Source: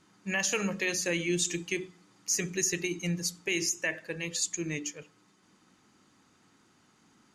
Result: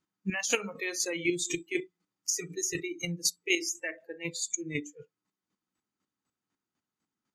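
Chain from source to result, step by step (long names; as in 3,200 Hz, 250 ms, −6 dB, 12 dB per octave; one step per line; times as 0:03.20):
square-wave tremolo 4 Hz, depth 60%, duty 20%
noise reduction from a noise print of the clip's start 24 dB
level +5 dB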